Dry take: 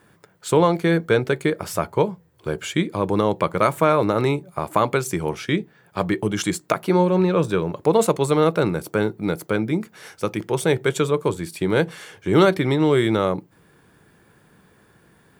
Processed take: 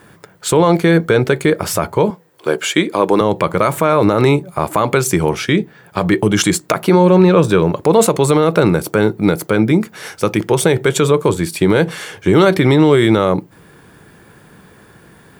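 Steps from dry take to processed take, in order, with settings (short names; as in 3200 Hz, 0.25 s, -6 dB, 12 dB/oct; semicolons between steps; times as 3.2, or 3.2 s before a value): 2.1–3.21 HPF 290 Hz 12 dB/oct; maximiser +12 dB; gain -1 dB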